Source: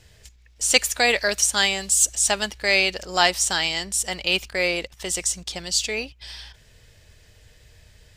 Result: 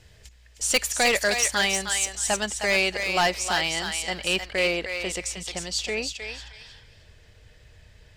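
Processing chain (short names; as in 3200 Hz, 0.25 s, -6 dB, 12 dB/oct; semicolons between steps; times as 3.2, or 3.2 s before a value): high shelf 5100 Hz -5 dB, from 1.48 s -12 dB; hard clip -15.5 dBFS, distortion -12 dB; thinning echo 0.311 s, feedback 21%, high-pass 860 Hz, level -4.5 dB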